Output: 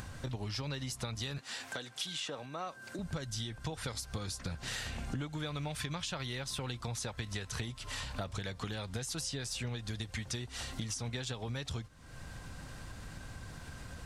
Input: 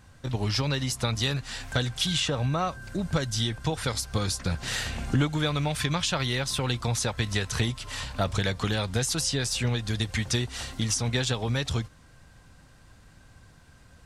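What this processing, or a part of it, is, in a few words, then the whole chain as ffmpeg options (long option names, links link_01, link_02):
upward and downward compression: -filter_complex "[0:a]acompressor=mode=upward:threshold=-41dB:ratio=2.5,acompressor=threshold=-41dB:ratio=4,asettb=1/sr,asplit=3[link_01][link_02][link_03];[link_01]atrim=end=1.384[link_04];[link_02]atrim=start=1.38:end=2.99,asetpts=PTS-STARTPTS,afade=type=in:duration=0.004:curve=qsin,afade=type=out:start_time=1.606:duration=0.004:curve=qsin,highpass=270[link_05];[link_03]atrim=start=2.986[link_06];[link_04][link_05]acrossfade=duration=0.004:curve1=hsin:curve2=qsin[link_07];[link_07][link_06]acrossfade=duration=0.004:curve1=qsin:curve2=hsin,volume=2.5dB"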